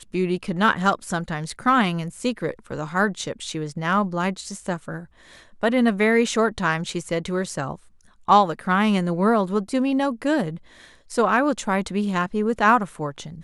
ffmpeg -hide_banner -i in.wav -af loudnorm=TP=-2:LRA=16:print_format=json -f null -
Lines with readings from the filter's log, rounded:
"input_i" : "-22.5",
"input_tp" : "-3.3",
"input_lra" : "3.3",
"input_thresh" : "-33.0",